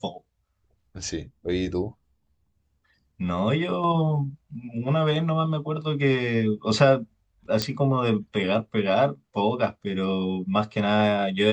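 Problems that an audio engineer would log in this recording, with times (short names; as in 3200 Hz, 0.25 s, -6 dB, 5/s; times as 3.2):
7.62 pop -9 dBFS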